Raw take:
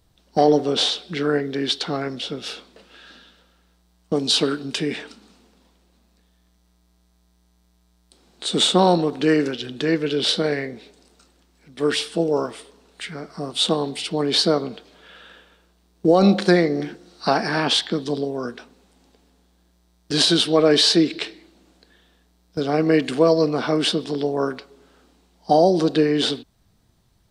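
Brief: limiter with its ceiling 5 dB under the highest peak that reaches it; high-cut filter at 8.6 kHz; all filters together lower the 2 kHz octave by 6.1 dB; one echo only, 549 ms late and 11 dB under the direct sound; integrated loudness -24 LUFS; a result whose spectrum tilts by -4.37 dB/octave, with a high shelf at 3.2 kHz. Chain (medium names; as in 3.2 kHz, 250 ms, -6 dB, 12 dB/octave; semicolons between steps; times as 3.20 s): low-pass 8.6 kHz; peaking EQ 2 kHz -6.5 dB; treble shelf 3.2 kHz -5 dB; peak limiter -10 dBFS; delay 549 ms -11 dB; trim -1 dB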